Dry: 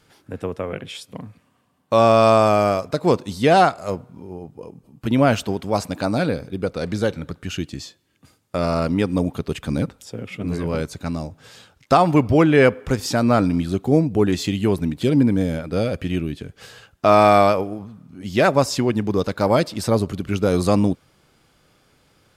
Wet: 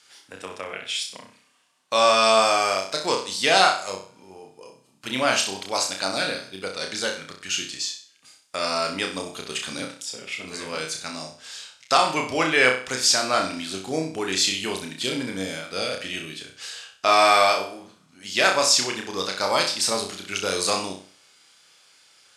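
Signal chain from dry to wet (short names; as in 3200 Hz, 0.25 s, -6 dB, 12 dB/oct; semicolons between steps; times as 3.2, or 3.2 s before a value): weighting filter ITU-R 468; on a send: flutter echo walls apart 5.4 m, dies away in 0.43 s; on the sum: gain -3.5 dB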